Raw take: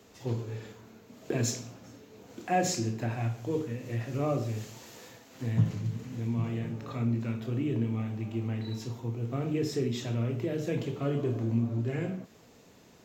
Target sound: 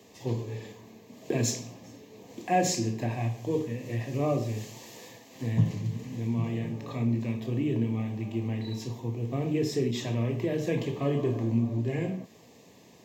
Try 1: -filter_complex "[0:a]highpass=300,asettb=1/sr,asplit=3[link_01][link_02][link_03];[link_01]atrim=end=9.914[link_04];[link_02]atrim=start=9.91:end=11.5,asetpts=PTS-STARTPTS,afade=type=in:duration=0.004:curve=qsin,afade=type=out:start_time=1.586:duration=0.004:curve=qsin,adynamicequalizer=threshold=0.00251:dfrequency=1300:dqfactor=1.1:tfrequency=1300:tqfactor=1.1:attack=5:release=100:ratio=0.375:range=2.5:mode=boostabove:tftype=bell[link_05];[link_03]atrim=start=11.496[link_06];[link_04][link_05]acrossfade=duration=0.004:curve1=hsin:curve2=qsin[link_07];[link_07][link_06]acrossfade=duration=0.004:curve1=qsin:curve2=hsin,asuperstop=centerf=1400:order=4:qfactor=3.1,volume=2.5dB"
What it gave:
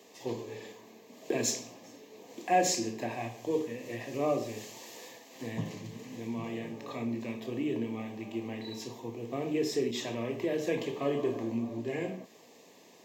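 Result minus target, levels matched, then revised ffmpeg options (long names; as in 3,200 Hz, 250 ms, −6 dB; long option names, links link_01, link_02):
125 Hz band −10.0 dB
-filter_complex "[0:a]highpass=93,asettb=1/sr,asplit=3[link_01][link_02][link_03];[link_01]atrim=end=9.914[link_04];[link_02]atrim=start=9.91:end=11.5,asetpts=PTS-STARTPTS,afade=type=in:duration=0.004:curve=qsin,afade=type=out:start_time=1.586:duration=0.004:curve=qsin,adynamicequalizer=threshold=0.00251:dfrequency=1300:dqfactor=1.1:tfrequency=1300:tqfactor=1.1:attack=5:release=100:ratio=0.375:range=2.5:mode=boostabove:tftype=bell[link_05];[link_03]atrim=start=11.496[link_06];[link_04][link_05]acrossfade=duration=0.004:curve1=hsin:curve2=qsin[link_07];[link_07][link_06]acrossfade=duration=0.004:curve1=qsin:curve2=hsin,asuperstop=centerf=1400:order=4:qfactor=3.1,volume=2.5dB"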